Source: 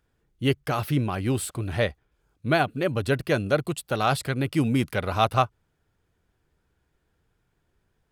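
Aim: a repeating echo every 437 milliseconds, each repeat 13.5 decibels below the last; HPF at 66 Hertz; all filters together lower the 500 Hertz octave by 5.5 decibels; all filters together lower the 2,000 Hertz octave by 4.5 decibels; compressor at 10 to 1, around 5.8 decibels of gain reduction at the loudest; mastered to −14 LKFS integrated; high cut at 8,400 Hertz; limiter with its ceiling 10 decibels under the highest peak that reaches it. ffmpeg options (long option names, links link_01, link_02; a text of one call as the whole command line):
ffmpeg -i in.wav -af "highpass=66,lowpass=8400,equalizer=frequency=500:width_type=o:gain=-7,equalizer=frequency=2000:width_type=o:gain=-6,acompressor=threshold=-25dB:ratio=10,alimiter=level_in=1.5dB:limit=-24dB:level=0:latency=1,volume=-1.5dB,aecho=1:1:437|874:0.211|0.0444,volume=21.5dB" out.wav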